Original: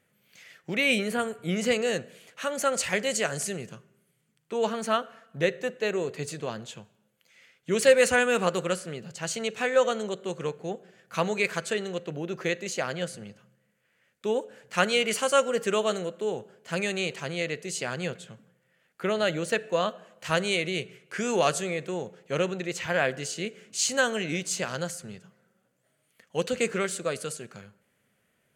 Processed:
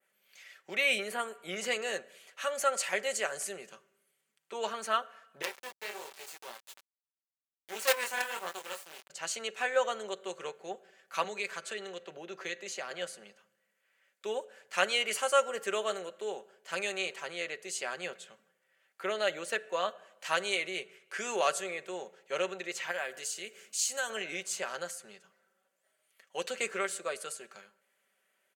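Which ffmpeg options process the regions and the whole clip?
-filter_complex "[0:a]asettb=1/sr,asplit=3[s0][s1][s2];[s0]atrim=end=5.424[s3];[s1]atrim=start=5.42:end=9.1,asetpts=PTS-STARTPTS,afade=t=in:d=0.004:c=qsin,afade=t=out:st=3.676:d=0.004:c=qsin,highpass=f=390:p=1,flanger=delay=18:depth=7.5:speed=1.3,acrusher=bits=4:dc=4:mix=0:aa=0.000001[s4];[s2]atrim=start=9.096[s5];[s3][s4]acrossfade=d=0.004:c1=hsin:c2=qsin[s6];[s6][s5]acrossfade=d=0.004:c1=qsin:c2=hsin,asettb=1/sr,asplit=3[s7][s8][s9];[s7]atrim=end=11.244[s10];[s8]atrim=start=11.24:end=12.91,asetpts=PTS-STARTPTS,afade=t=in:d=0.004:c=qsin,afade=t=out:st=1.666:d=0.004:c=qsin,acrossover=split=280|3000[s11][s12][s13];[s12]acompressor=threshold=0.0158:ratio=2:attack=3.2:release=140:knee=2.83:detection=peak[s14];[s11][s14][s13]amix=inputs=3:normalize=0,highshelf=f=9700:g=-9[s15];[s9]atrim=start=12.906[s16];[s10][s15]acrossfade=d=0.004:c1=hsin:c2=qsin[s17];[s17][s16]acrossfade=d=0.004:c1=qsin:c2=hsin,asettb=1/sr,asplit=3[s18][s19][s20];[s18]atrim=end=22.914[s21];[s19]atrim=start=22.91:end=24.1,asetpts=PTS-STARTPTS,afade=t=in:d=0.004:c=qsin,afade=t=out:st=1.186:d=0.004:c=qsin,aemphasis=mode=production:type=50kf,acompressor=threshold=0.0112:ratio=1.5:attack=3.2:release=140:knee=1:detection=peak[s22];[s20]atrim=start=24.096[s23];[s21][s22]acrossfade=d=0.004:c1=hsin:c2=qsin[s24];[s24][s23]acrossfade=d=0.004:c1=qsin:c2=hsin,highpass=560,adynamicequalizer=threshold=0.00708:dfrequency=4700:dqfactor=0.75:tfrequency=4700:tqfactor=0.75:attack=5:release=100:ratio=0.375:range=3:mode=cutabove:tftype=bell,aecho=1:1:5.2:0.43,volume=0.708"

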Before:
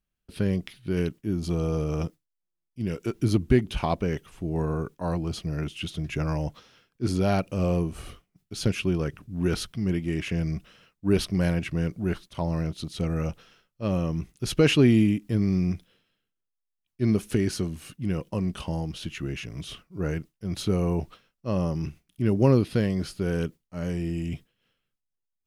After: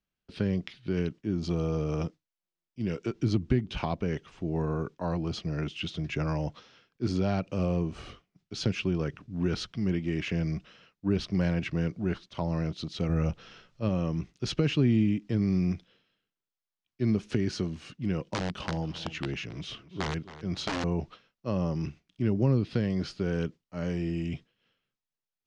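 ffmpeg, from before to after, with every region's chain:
-filter_complex "[0:a]asettb=1/sr,asplit=3[s0][s1][s2];[s0]atrim=end=13.094[s3];[s1]atrim=start=13.09:end=13.89,asetpts=PTS-STARTPTS,afade=t=in:d=0.004:c=qsin,afade=t=out:st=0.796:d=0.004:c=qsin,lowshelf=f=130:g=8.5,acompressor=mode=upward:threshold=0.0112:ratio=2.5:attack=3.2:release=140:knee=2.83:detection=peak[s4];[s2]atrim=start=13.886[s5];[s3][s4]acrossfade=d=0.004:c1=hsin:c2=qsin[s6];[s6][s5]acrossfade=d=0.004:c1=qsin:c2=hsin,asettb=1/sr,asplit=3[s7][s8][s9];[s7]atrim=end=18.224[s10];[s8]atrim=start=18.22:end=20.84,asetpts=PTS-STARTPTS,afade=t=in:d=0.004:c=qsin,afade=t=out:st=2.616:d=0.004:c=qsin,aeval=exprs='(mod(11.2*val(0)+1,2)-1)/11.2':c=same,asplit=2[s11][s12];[s12]adelay=271,lowpass=f=4100:p=1,volume=0.141,asplit=2[s13][s14];[s14]adelay=271,lowpass=f=4100:p=1,volume=0.3,asplit=2[s15][s16];[s16]adelay=271,lowpass=f=4100:p=1,volume=0.3[s17];[s11][s13][s15][s17]amix=inputs=4:normalize=0,atrim=end_sample=115542[s18];[s9]atrim=start=20.836[s19];[s10][s18]acrossfade=d=0.004:c1=hsin:c2=qsin[s20];[s20][s19]acrossfade=d=0.004:c1=qsin:c2=hsin,lowpass=f=6000:w=0.5412,lowpass=f=6000:w=1.3066,lowshelf=f=70:g=-11,acrossover=split=210[s21][s22];[s22]acompressor=threshold=0.0355:ratio=5[s23];[s21][s23]amix=inputs=2:normalize=0"

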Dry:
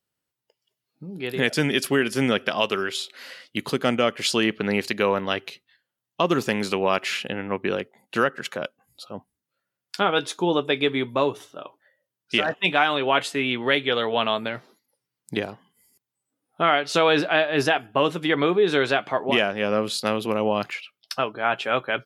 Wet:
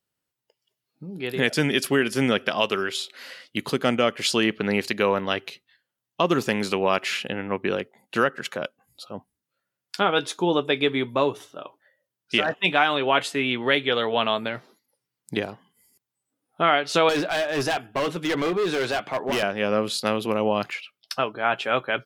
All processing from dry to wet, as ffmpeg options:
-filter_complex "[0:a]asettb=1/sr,asplit=3[s0][s1][s2];[s0]atrim=end=17.094[s3];[s1]atrim=start=17.09:end=19.43,asetpts=PTS-STARTPTS,afade=t=in:d=0.004:c=qsin,afade=t=out:st=2.336:d=0.004:c=qsin,highpass=f=80:w=0.5412,highpass=f=80:w=1.3066,volume=10.6,asoftclip=hard,volume=0.0944[s4];[s2]atrim=start=19.426[s5];[s3][s4]acrossfade=d=0.004:c1=hsin:c2=qsin[s6];[s6][s5]acrossfade=d=0.004:c1=qsin:c2=hsin"

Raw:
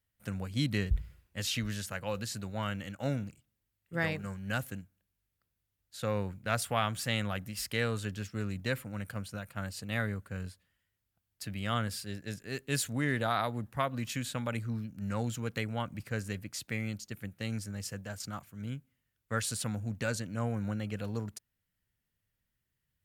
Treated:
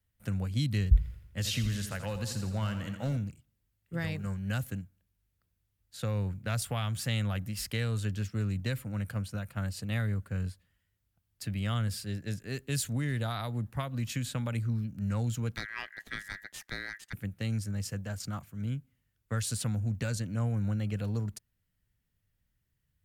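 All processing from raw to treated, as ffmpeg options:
-filter_complex "[0:a]asettb=1/sr,asplit=3[s0][s1][s2];[s0]atrim=end=0.974[s3];[s1]atrim=start=0.97:end=3.17,asetpts=PTS-STARTPTS,afade=t=in:d=0.004:c=qsin,afade=t=out:st=2.196:d=0.004:c=qsin,asoftclip=type=hard:threshold=0.0631,aecho=1:1:83|166|249|332|415|498:0.316|0.174|0.0957|0.0526|0.0289|0.0159,atrim=end_sample=97020[s4];[s2]atrim=start=3.166[s5];[s3][s4]acrossfade=d=0.004:c1=hsin:c2=qsin[s6];[s6][s5]acrossfade=d=0.004:c1=qsin:c2=hsin,asettb=1/sr,asplit=3[s7][s8][s9];[s7]atrim=end=15.564[s10];[s8]atrim=start=15.56:end=17.13,asetpts=PTS-STARTPTS,afade=t=in:d=0.004:c=qsin,afade=t=out:st=1.566:d=0.004:c=qsin,aeval=exprs='if(lt(val(0),0),0.447*val(0),val(0))':c=same,aeval=exprs='val(0)*sin(2*PI*1800*n/s)':c=same[s11];[s9]atrim=start=17.126[s12];[s10][s11]acrossfade=d=0.004:c1=hsin:c2=qsin[s13];[s13][s12]acrossfade=d=0.004:c1=qsin:c2=hsin,lowshelf=f=190:g=9,acrossover=split=140|3000[s14][s15][s16];[s15]acompressor=threshold=0.02:ratio=6[s17];[s14][s17][s16]amix=inputs=3:normalize=0"

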